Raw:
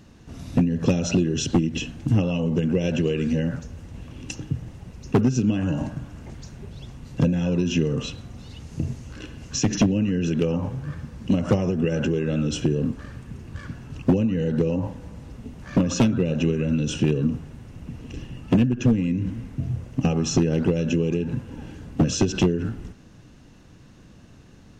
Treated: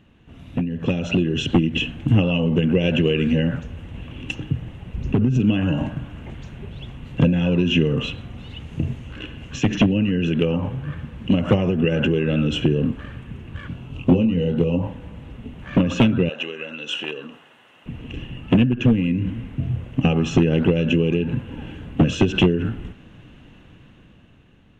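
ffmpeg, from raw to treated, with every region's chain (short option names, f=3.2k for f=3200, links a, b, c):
-filter_complex "[0:a]asettb=1/sr,asplit=3[a][b][c];[a]atrim=end=4.944[d];[b]atrim=start=4.94:end=5.4,asetpts=PTS-STARTPTS,afade=t=in:d=0.004:c=qsin,afade=t=out:st=0.456:d=0.004:c=qsin,lowshelf=f=320:g=11,acompressor=threshold=-17dB:ratio=12:attack=3.2:release=140:knee=1:detection=peak[e];[c]atrim=start=5.396[f];[d][e]acrossfade=d=0.004:c1=hsin:c2=qsin[g];[g][f]acrossfade=d=0.004:c1=qsin:c2=hsin,asettb=1/sr,asplit=3[h][i][j];[h]atrim=end=13.684[k];[i]atrim=start=13.68:end=14.82,asetpts=PTS-STARTPTS,afade=t=in:d=0.004:c=qsin,afade=t=out:st=1.136:d=0.004:c=qsin,equalizer=f=1.7k:t=o:w=0.53:g=-10,asplit=2[l][m];[m]adelay=23,volume=-6dB[n];[l][n]amix=inputs=2:normalize=0,atrim=end_sample=50274[o];[j]atrim=start=14.816[p];[k][o]acrossfade=d=0.004:c1=hsin:c2=qsin[q];[q][p]acrossfade=d=0.004:c1=qsin:c2=hsin,asettb=1/sr,asplit=3[r][s][t];[r]atrim=end=16.294[u];[s]atrim=start=16.29:end=17.86,asetpts=PTS-STARTPTS,afade=t=in:d=0.004:c=qsin,afade=t=out:st=1.566:d=0.004:c=qsin,highpass=740,bandreject=f=2.3k:w=9.9[v];[t]atrim=start=17.856[w];[u][v]acrossfade=d=0.004:c1=hsin:c2=qsin[x];[x][w]acrossfade=d=0.004:c1=qsin:c2=hsin,highshelf=f=3.9k:t=q:w=3:g=-8.5,dynaudnorm=f=130:g=17:m=11.5dB,volume=-5dB"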